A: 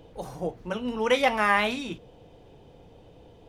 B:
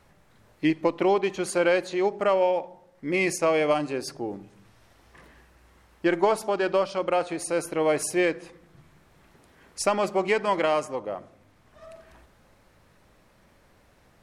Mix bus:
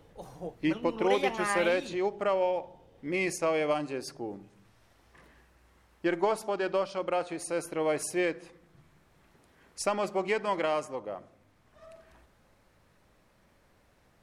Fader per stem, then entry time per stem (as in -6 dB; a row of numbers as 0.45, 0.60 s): -8.5, -5.5 dB; 0.00, 0.00 s